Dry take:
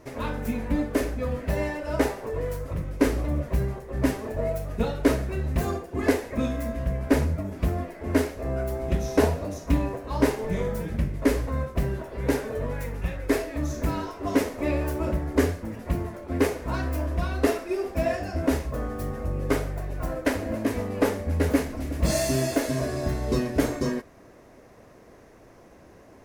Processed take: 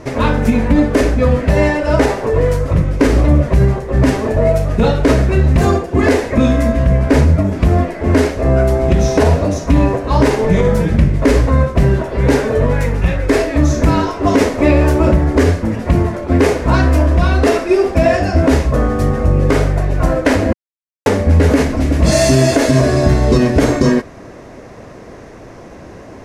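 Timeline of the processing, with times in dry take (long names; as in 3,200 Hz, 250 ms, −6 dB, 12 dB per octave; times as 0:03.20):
0:20.53–0:21.06: silence
whole clip: low-pass filter 7,900 Hz 12 dB per octave; parametric band 130 Hz +2.5 dB 1.7 octaves; boost into a limiter +16.5 dB; level −1 dB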